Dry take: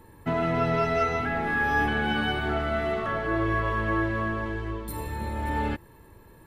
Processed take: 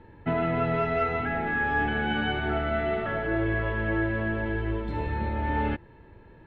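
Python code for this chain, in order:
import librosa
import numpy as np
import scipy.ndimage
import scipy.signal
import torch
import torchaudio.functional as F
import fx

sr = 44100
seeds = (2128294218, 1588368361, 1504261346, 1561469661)

p1 = scipy.signal.sosfilt(scipy.signal.butter(4, 3300.0, 'lowpass', fs=sr, output='sos'), x)
p2 = fx.notch(p1, sr, hz=1100.0, q=5.8)
p3 = fx.rider(p2, sr, range_db=10, speed_s=0.5)
p4 = p2 + (p3 * librosa.db_to_amplitude(1.0))
y = p4 * librosa.db_to_amplitude(-6.5)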